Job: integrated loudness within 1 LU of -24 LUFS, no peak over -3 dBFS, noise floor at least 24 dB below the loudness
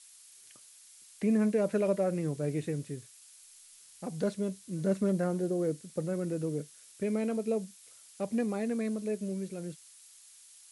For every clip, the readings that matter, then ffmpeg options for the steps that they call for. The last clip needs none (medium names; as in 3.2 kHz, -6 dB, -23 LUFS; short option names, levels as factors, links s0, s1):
noise floor -56 dBFS; noise floor target -57 dBFS; loudness -32.5 LUFS; peak level -18.5 dBFS; loudness target -24.0 LUFS
-> -af "afftdn=nr=6:nf=-56"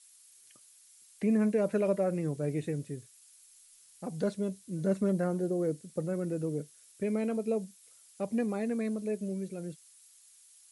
noise floor -60 dBFS; loudness -32.5 LUFS; peak level -18.5 dBFS; loudness target -24.0 LUFS
-> -af "volume=2.66"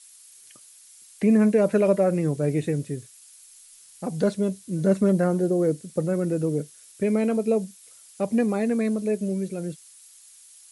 loudness -24.0 LUFS; peak level -10.0 dBFS; noise floor -51 dBFS